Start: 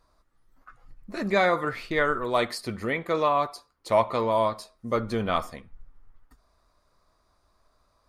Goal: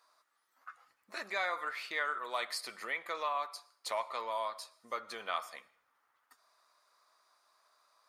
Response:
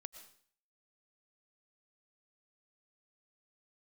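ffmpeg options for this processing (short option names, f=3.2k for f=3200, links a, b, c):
-filter_complex "[0:a]acompressor=threshold=-37dB:ratio=2,highpass=940,asplit=2[a][b];[1:a]atrim=start_sample=2205[c];[b][c]afir=irnorm=-1:irlink=0,volume=-6dB[d];[a][d]amix=inputs=2:normalize=0"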